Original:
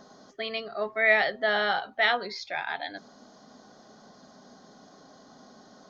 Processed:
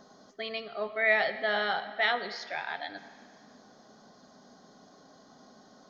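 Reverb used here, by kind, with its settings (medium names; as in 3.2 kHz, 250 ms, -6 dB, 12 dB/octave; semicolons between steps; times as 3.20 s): algorithmic reverb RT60 2.1 s, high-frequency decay 0.85×, pre-delay 35 ms, DRR 13 dB; trim -3.5 dB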